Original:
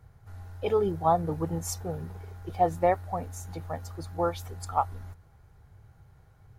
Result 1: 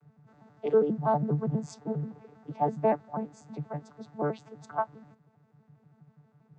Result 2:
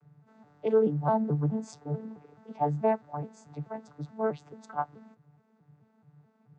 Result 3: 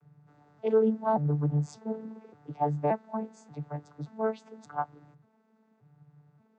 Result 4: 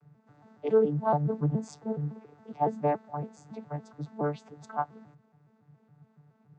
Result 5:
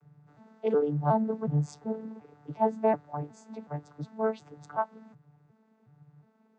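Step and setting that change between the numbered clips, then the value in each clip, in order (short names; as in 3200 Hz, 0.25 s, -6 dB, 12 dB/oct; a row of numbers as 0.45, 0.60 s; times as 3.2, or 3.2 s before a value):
arpeggiated vocoder, a note every: 81, 215, 580, 140, 366 ms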